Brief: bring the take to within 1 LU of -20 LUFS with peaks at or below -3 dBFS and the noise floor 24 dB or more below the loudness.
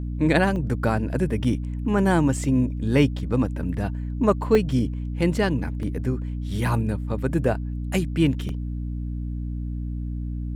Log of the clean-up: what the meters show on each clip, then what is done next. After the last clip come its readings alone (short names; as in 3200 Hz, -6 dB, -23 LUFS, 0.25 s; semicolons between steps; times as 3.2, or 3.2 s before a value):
dropouts 4; longest dropout 1.5 ms; hum 60 Hz; harmonics up to 300 Hz; hum level -26 dBFS; loudness -24.5 LUFS; peak -6.0 dBFS; loudness target -20.0 LUFS
-> interpolate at 0.56/4.55/5.83/8.49, 1.5 ms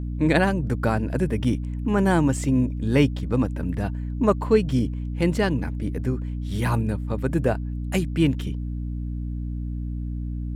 dropouts 0; hum 60 Hz; harmonics up to 300 Hz; hum level -26 dBFS
-> notches 60/120/180/240/300 Hz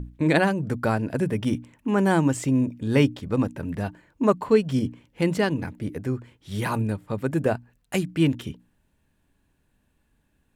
hum none; loudness -25.0 LUFS; peak -7.0 dBFS; loudness target -20.0 LUFS
-> gain +5 dB; limiter -3 dBFS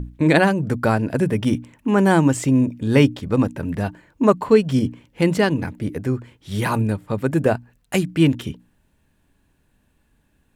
loudness -20.0 LUFS; peak -3.0 dBFS; noise floor -64 dBFS